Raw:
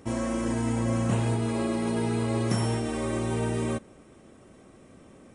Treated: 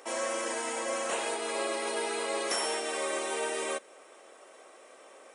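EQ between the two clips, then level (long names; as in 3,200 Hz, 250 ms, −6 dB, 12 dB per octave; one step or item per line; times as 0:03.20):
high-pass filter 500 Hz 24 dB per octave
dynamic equaliser 850 Hz, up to −5 dB, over −48 dBFS, Q 0.95
+5.5 dB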